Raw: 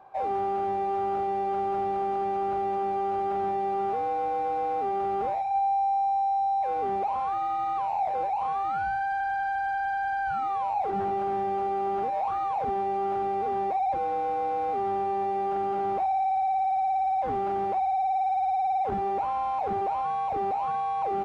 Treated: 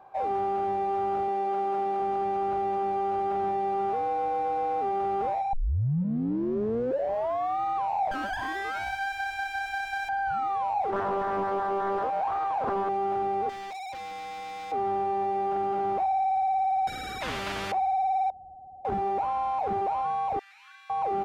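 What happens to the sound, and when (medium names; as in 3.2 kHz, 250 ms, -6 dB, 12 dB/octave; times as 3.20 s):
1.28–2.00 s: high-pass 200 Hz
5.53 s: tape start 2.08 s
8.11–10.09 s: comb filter that takes the minimum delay 3 ms
10.92–12.89 s: loudspeaker Doppler distortion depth 0.73 ms
13.49–14.72 s: hard clipper -37 dBFS
16.87–17.72 s: spectrum-flattening compressor 4:1
18.30–18.85 s: elliptic low-pass 590 Hz
20.39–20.90 s: elliptic high-pass 1.6 kHz, stop band 80 dB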